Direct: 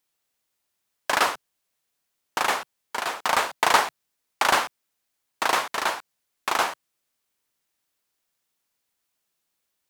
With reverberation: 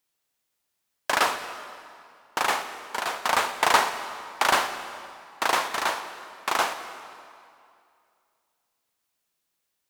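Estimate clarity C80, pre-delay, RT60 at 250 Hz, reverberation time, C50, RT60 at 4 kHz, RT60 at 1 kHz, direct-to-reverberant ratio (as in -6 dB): 10.5 dB, 40 ms, 2.3 s, 2.4 s, 9.5 dB, 1.9 s, 2.4 s, 9.0 dB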